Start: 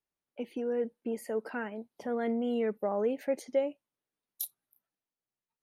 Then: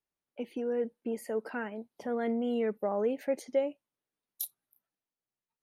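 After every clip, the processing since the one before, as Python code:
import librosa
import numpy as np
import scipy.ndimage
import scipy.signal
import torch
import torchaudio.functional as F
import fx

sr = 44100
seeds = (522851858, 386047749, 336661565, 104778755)

y = x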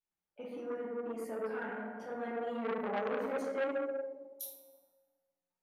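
y = fx.comb_fb(x, sr, f0_hz=180.0, decay_s=1.1, harmonics='all', damping=0.0, mix_pct=70)
y = fx.rev_plate(y, sr, seeds[0], rt60_s=1.6, hf_ratio=0.25, predelay_ms=0, drr_db=-7.0)
y = fx.transformer_sat(y, sr, knee_hz=1300.0)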